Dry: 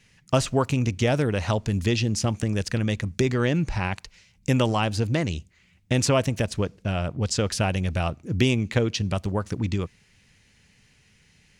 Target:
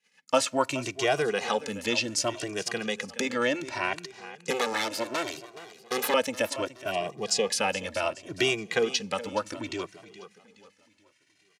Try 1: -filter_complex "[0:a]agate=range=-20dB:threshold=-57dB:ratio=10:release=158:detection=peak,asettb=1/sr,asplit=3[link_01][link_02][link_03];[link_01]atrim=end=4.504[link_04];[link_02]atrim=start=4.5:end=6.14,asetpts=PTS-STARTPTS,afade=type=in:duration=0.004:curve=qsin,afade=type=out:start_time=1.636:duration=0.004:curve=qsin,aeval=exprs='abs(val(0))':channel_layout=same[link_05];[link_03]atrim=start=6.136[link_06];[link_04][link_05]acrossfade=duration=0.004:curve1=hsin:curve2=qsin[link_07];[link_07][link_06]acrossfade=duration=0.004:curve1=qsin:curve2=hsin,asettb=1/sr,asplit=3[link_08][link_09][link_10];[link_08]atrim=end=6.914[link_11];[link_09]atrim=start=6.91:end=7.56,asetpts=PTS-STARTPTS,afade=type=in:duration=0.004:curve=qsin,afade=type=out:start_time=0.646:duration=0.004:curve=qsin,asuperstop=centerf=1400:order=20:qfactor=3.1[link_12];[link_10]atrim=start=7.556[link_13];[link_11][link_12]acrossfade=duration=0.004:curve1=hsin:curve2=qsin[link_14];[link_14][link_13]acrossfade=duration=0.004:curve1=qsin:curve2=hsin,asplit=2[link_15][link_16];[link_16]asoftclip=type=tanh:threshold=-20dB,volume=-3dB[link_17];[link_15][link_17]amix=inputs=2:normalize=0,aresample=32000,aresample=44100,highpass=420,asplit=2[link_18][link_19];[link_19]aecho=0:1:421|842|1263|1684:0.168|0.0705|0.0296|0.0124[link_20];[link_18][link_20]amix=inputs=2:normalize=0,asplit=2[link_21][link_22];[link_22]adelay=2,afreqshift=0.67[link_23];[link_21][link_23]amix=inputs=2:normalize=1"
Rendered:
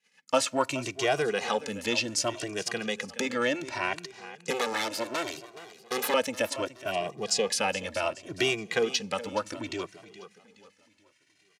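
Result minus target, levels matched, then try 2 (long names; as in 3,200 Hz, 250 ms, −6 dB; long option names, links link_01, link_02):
soft clipping: distortion +9 dB
-filter_complex "[0:a]agate=range=-20dB:threshold=-57dB:ratio=10:release=158:detection=peak,asettb=1/sr,asplit=3[link_01][link_02][link_03];[link_01]atrim=end=4.504[link_04];[link_02]atrim=start=4.5:end=6.14,asetpts=PTS-STARTPTS,afade=type=in:duration=0.004:curve=qsin,afade=type=out:start_time=1.636:duration=0.004:curve=qsin,aeval=exprs='abs(val(0))':channel_layout=same[link_05];[link_03]atrim=start=6.136[link_06];[link_04][link_05]acrossfade=duration=0.004:curve1=hsin:curve2=qsin[link_07];[link_07][link_06]acrossfade=duration=0.004:curve1=qsin:curve2=hsin,asettb=1/sr,asplit=3[link_08][link_09][link_10];[link_08]atrim=end=6.914[link_11];[link_09]atrim=start=6.91:end=7.56,asetpts=PTS-STARTPTS,afade=type=in:duration=0.004:curve=qsin,afade=type=out:start_time=0.646:duration=0.004:curve=qsin,asuperstop=centerf=1400:order=20:qfactor=3.1[link_12];[link_10]atrim=start=7.556[link_13];[link_11][link_12]acrossfade=duration=0.004:curve1=hsin:curve2=qsin[link_14];[link_14][link_13]acrossfade=duration=0.004:curve1=qsin:curve2=hsin,asplit=2[link_15][link_16];[link_16]asoftclip=type=tanh:threshold=-12.5dB,volume=-3dB[link_17];[link_15][link_17]amix=inputs=2:normalize=0,aresample=32000,aresample=44100,highpass=420,asplit=2[link_18][link_19];[link_19]aecho=0:1:421|842|1263|1684:0.168|0.0705|0.0296|0.0124[link_20];[link_18][link_20]amix=inputs=2:normalize=0,asplit=2[link_21][link_22];[link_22]adelay=2,afreqshift=0.67[link_23];[link_21][link_23]amix=inputs=2:normalize=1"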